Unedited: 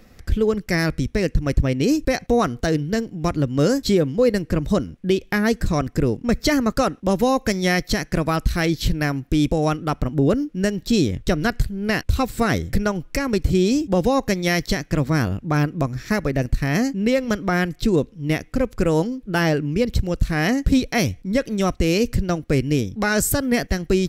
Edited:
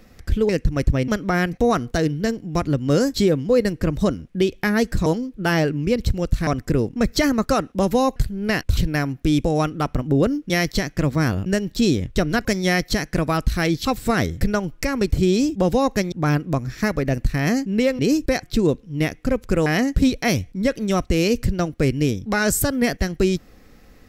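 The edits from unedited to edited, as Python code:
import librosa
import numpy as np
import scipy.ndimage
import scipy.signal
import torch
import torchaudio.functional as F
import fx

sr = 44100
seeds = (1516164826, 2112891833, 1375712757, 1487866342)

y = fx.edit(x, sr, fx.cut(start_s=0.49, length_s=0.7),
    fx.swap(start_s=1.78, length_s=0.44, other_s=17.27, other_length_s=0.45),
    fx.swap(start_s=7.44, length_s=1.4, other_s=11.56, other_length_s=0.61),
    fx.move(start_s=14.44, length_s=0.96, to_s=10.57),
    fx.move(start_s=18.95, length_s=1.41, to_s=5.75), tone=tone)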